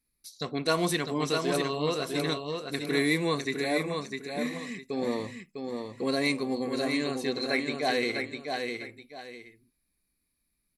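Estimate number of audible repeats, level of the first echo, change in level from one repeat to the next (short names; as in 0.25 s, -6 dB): 2, -5.0 dB, -11.0 dB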